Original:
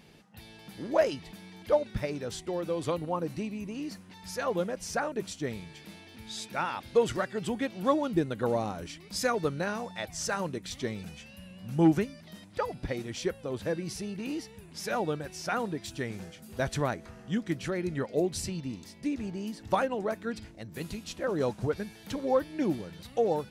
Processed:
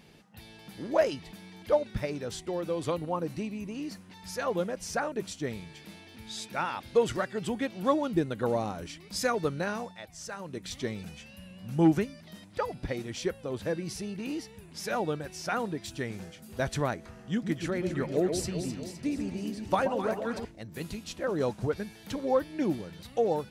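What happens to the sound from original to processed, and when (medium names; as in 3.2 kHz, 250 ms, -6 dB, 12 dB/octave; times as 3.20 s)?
9.82–10.61 s: dip -8.5 dB, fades 0.15 s
17.30–20.45 s: echo whose repeats swap between lows and highs 128 ms, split 890 Hz, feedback 74%, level -6 dB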